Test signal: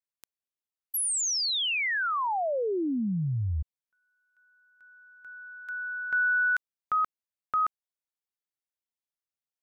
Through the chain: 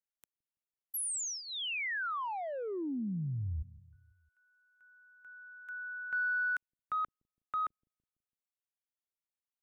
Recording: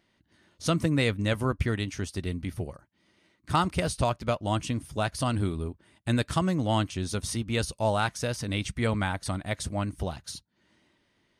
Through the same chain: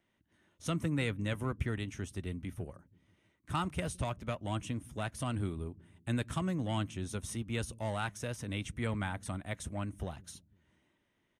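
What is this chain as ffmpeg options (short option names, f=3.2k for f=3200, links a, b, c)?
-filter_complex "[0:a]equalizer=f=4.6k:w=3.5:g=-13,acrossover=split=320|1100[a][b][c];[a]aecho=1:1:166|332|498|664:0.112|0.0606|0.0327|0.0177[d];[b]asoftclip=type=tanh:threshold=-30.5dB[e];[d][e][c]amix=inputs=3:normalize=0,volume=-7dB"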